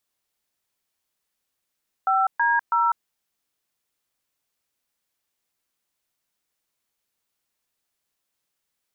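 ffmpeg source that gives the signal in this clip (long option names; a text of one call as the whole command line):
ffmpeg -f lavfi -i "aevalsrc='0.1*clip(min(mod(t,0.325),0.199-mod(t,0.325))/0.002,0,1)*(eq(floor(t/0.325),0)*(sin(2*PI*770*mod(t,0.325))+sin(2*PI*1336*mod(t,0.325)))+eq(floor(t/0.325),1)*(sin(2*PI*941*mod(t,0.325))+sin(2*PI*1633*mod(t,0.325)))+eq(floor(t/0.325),2)*(sin(2*PI*941*mod(t,0.325))+sin(2*PI*1336*mod(t,0.325))))':duration=0.975:sample_rate=44100" out.wav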